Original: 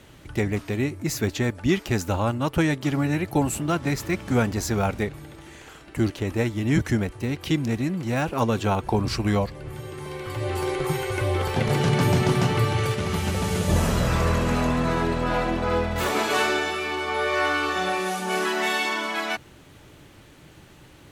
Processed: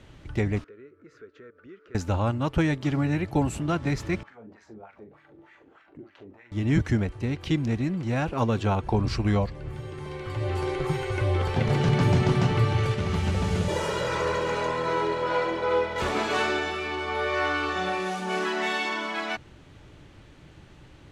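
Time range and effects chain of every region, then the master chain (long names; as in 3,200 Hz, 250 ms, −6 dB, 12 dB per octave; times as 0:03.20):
0:00.64–0:01.95: pair of resonant band-passes 790 Hz, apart 1.6 octaves + downward compressor 2 to 1, threshold −48 dBFS
0:04.23–0:06.52: downward compressor 20 to 1, threshold −32 dBFS + auto-filter band-pass sine 3.3 Hz 270–2,000 Hz + double-tracking delay 42 ms −8 dB
0:13.68–0:16.02: high-pass filter 270 Hz + comb filter 2.1 ms, depth 79%
whole clip: Bessel low-pass filter 5,400 Hz, order 2; low-shelf EQ 100 Hz +8 dB; level −3 dB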